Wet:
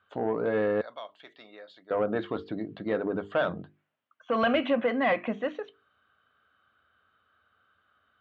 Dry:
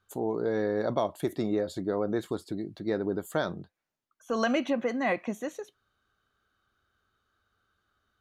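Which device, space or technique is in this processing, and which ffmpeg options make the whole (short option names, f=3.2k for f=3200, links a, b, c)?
overdrive pedal into a guitar cabinet: -filter_complex "[0:a]bandreject=f=50:t=h:w=6,bandreject=f=100:t=h:w=6,bandreject=f=150:t=h:w=6,bandreject=f=200:t=h:w=6,bandreject=f=250:t=h:w=6,bandreject=f=300:t=h:w=6,bandreject=f=350:t=h:w=6,bandreject=f=400:t=h:w=6,bandreject=f=450:t=h:w=6,asettb=1/sr,asplit=3[a][b][c];[a]atrim=end=0.814[d];[b]atrim=start=0.81:end=1.91,asetpts=PTS-STARTPTS,afade=t=in:d=0.004:c=qsin,afade=t=out:st=1.096:d=0.004:c=qsin,aderivative[e];[c]atrim=start=1.906[f];[d][e]acrossfade=d=0.004:c1=hsin:c2=qsin[g];[g][f]acrossfade=d=0.004:c1=qsin:c2=hsin,asplit=2[h][i];[i]highpass=f=720:p=1,volume=16dB,asoftclip=type=tanh:threshold=-14dB[j];[h][j]amix=inputs=2:normalize=0,lowpass=f=1.1k:p=1,volume=-6dB,highpass=75,equalizer=f=83:t=q:w=4:g=6,equalizer=f=370:t=q:w=4:g=-9,equalizer=f=860:t=q:w=4:g=-5,equalizer=f=3k:t=q:w=4:g=5,lowpass=f=3.6k:w=0.5412,lowpass=f=3.6k:w=1.3066,volume=2dB"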